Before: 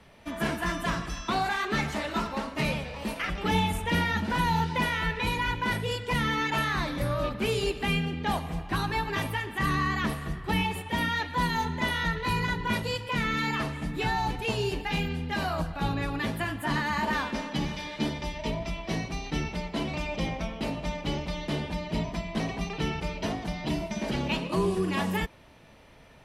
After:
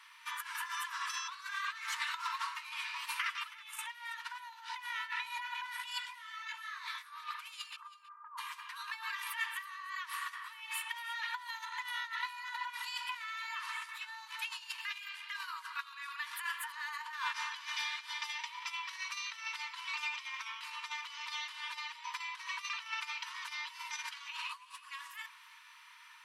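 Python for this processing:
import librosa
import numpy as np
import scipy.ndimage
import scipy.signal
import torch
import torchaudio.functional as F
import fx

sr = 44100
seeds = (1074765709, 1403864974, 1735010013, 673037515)

y = fx.cheby1_lowpass(x, sr, hz=1300.0, order=5, at=(7.75, 8.37), fade=0.02)
y = fx.over_compress(y, sr, threshold_db=-33.0, ratio=-0.5)
y = fx.brickwall_highpass(y, sr, low_hz=900.0)
y = y + 10.0 ** (-18.0 / 20.0) * np.pad(y, (int(324 * sr / 1000.0), 0))[:len(y)]
y = fx.detune_double(y, sr, cents=21, at=(6.05, 7.11), fade=0.02)
y = y * 10.0 ** (-1.5 / 20.0)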